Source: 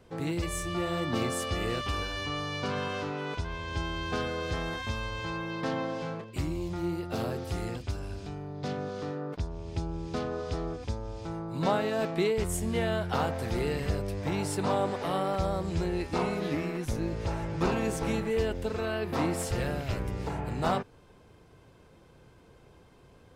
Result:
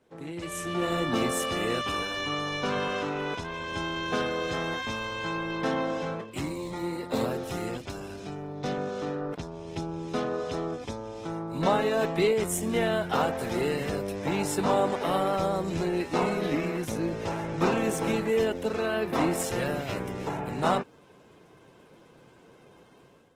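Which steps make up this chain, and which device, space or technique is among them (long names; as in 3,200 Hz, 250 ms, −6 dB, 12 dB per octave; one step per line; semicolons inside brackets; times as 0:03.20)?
parametric band 90 Hz −3.5 dB 0.79 octaves
0:11.72–0:12.26: comb filter 7.1 ms, depth 33%
notch filter 4,600 Hz, Q 7.2
0:06.44–0:07.26: EQ curve with evenly spaced ripples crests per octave 0.99, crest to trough 9 dB
video call (high-pass filter 150 Hz 12 dB per octave; automatic gain control gain up to 10.5 dB; level −6.5 dB; Opus 16 kbit/s 48,000 Hz)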